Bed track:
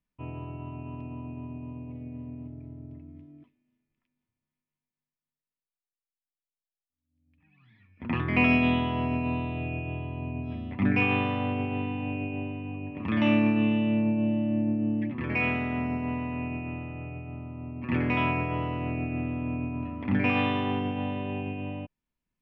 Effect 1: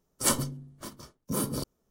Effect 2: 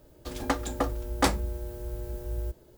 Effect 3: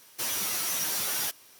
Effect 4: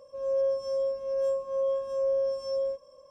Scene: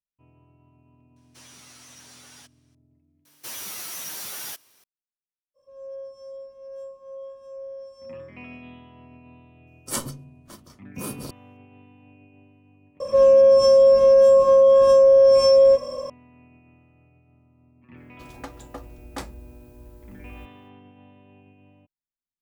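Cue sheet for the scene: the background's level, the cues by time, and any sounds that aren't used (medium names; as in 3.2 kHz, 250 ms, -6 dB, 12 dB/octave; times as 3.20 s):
bed track -20 dB
1.16 s: add 3 -16 dB + Savitzky-Golay filter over 9 samples
3.25 s: add 3 -5 dB
5.54 s: add 4 -11 dB, fades 0.05 s + band-stop 1.3 kHz, Q 11
9.67 s: add 1 -3.5 dB
13.00 s: add 4 -8 dB + loudness maximiser +30 dB
17.94 s: add 2 -11 dB, fades 0.05 s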